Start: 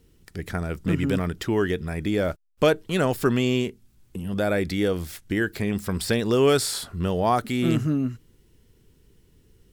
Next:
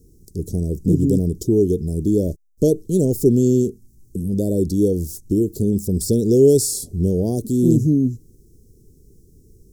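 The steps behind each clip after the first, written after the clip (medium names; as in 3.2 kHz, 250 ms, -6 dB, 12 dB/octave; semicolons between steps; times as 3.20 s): elliptic band-stop 420–6000 Hz, stop band 80 dB; trim +8 dB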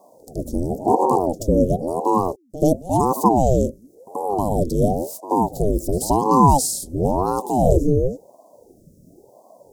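pre-echo 82 ms -16.5 dB; ring modulator with a swept carrier 400 Hz, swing 65%, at 0.95 Hz; trim +2 dB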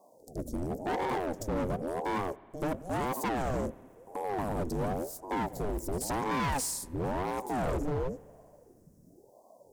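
overload inside the chain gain 19 dB; on a send at -20.5 dB: reverberation RT60 2.2 s, pre-delay 81 ms; on the sum: trim -9 dB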